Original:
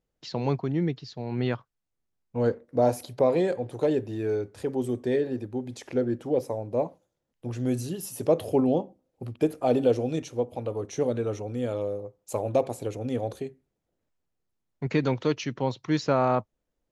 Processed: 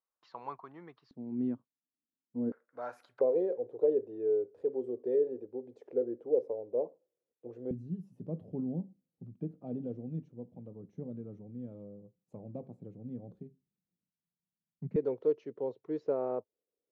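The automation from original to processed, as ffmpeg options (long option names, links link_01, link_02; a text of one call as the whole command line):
ffmpeg -i in.wav -af "asetnsamples=nb_out_samples=441:pad=0,asendcmd='1.11 bandpass f 260;2.52 bandpass f 1400;3.21 bandpass f 450;7.71 bandpass f 180;14.96 bandpass f 440',bandpass=frequency=1100:width_type=q:width=4.8:csg=0" out.wav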